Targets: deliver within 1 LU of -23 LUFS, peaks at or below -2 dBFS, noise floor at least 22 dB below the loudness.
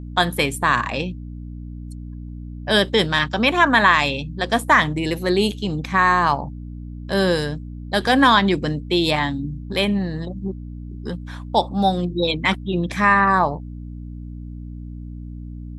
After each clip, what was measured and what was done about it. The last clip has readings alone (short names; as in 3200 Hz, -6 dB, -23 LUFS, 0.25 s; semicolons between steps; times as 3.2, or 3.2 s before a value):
hum 60 Hz; harmonics up to 300 Hz; hum level -31 dBFS; loudness -19.0 LUFS; peak -1.5 dBFS; loudness target -23.0 LUFS
-> de-hum 60 Hz, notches 5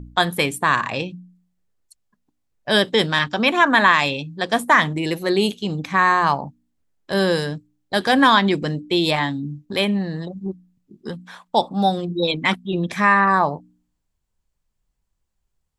hum none; loudness -19.0 LUFS; peak -1.5 dBFS; loudness target -23.0 LUFS
-> gain -4 dB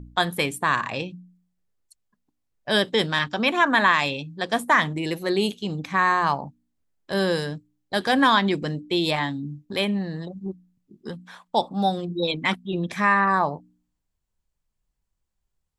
loudness -23.0 LUFS; peak -5.5 dBFS; noise floor -78 dBFS